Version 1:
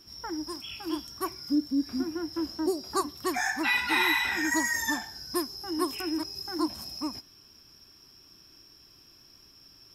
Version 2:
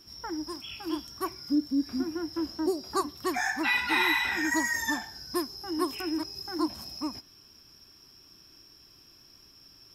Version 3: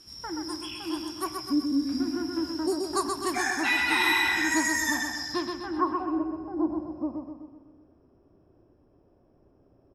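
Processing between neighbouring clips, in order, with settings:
dynamic bell 9.8 kHz, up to -4 dB, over -48 dBFS, Q 0.7
low-pass sweep 9.8 kHz -> 590 Hz, 4.99–6.12 s; feedback delay 127 ms, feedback 50%, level -5 dB; on a send at -12 dB: reverberation RT60 1.8 s, pre-delay 6 ms

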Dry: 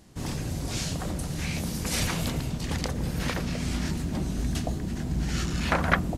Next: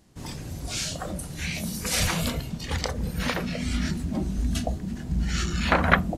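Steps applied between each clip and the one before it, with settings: spectral noise reduction 9 dB; trim +4 dB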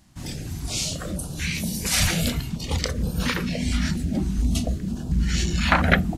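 step-sequenced notch 4.3 Hz 440–2000 Hz; trim +4 dB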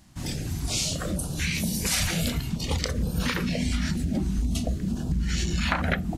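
compression 5:1, threshold -24 dBFS, peak gain reduction 11.5 dB; trim +1.5 dB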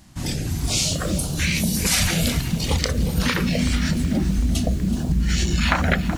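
bit-crushed delay 376 ms, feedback 55%, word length 7-bit, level -13 dB; trim +5.5 dB

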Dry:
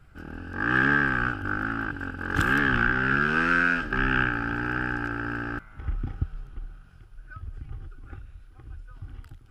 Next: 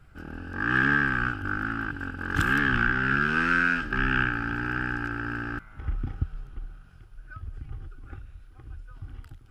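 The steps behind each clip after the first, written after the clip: dynamic bell 580 Hz, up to -7 dB, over -43 dBFS, Q 1.3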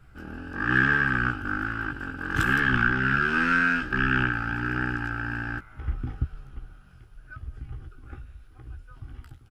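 doubling 16 ms -6.5 dB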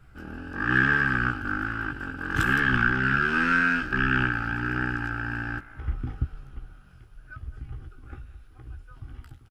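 speakerphone echo 210 ms, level -18 dB

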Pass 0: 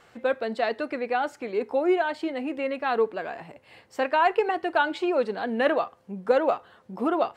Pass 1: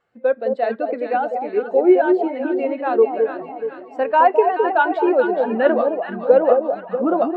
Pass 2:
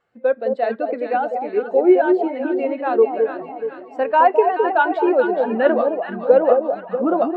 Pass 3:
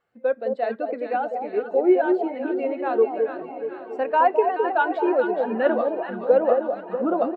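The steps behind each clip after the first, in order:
echo whose repeats swap between lows and highs 213 ms, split 920 Hz, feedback 78%, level -3 dB; spectral contrast expander 1.5:1; trim +6 dB
no audible change
feedback delay 914 ms, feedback 51%, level -17 dB; trim -4.5 dB

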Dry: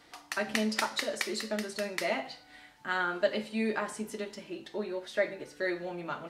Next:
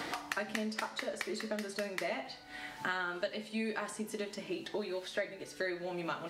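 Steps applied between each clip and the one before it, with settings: three bands compressed up and down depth 100%; trim -5.5 dB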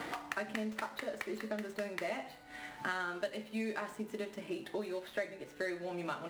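median filter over 9 samples; trim -1 dB

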